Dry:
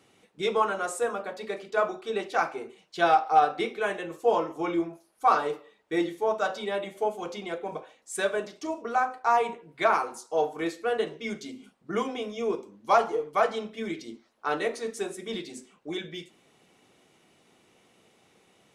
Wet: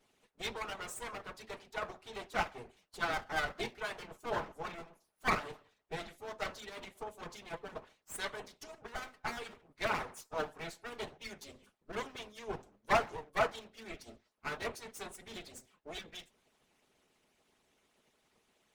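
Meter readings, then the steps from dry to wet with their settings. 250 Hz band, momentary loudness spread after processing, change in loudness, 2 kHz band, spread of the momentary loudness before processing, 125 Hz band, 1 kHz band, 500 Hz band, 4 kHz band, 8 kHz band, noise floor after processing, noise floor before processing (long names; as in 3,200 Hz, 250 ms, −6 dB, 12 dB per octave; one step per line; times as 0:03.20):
−14.5 dB, 16 LU, −11.5 dB, −6.0 dB, 13 LU, −3.5 dB, −13.5 dB, −13.5 dB, −5.5 dB, −6.5 dB, −77 dBFS, −65 dBFS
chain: lower of the sound and its delayed copy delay 4.7 ms
harmonic and percussive parts rebalanced harmonic −17 dB
level −3.5 dB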